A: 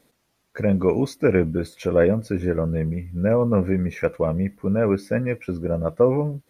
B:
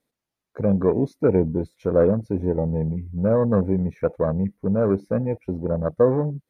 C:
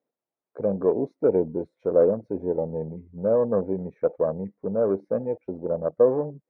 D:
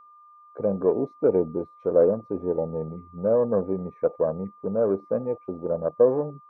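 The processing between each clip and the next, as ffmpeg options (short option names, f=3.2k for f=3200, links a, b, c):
-af "afwtdn=0.0398"
-af "bandpass=f=550:t=q:w=1.1:csg=0"
-af "aeval=exprs='val(0)+0.00355*sin(2*PI*1200*n/s)':c=same"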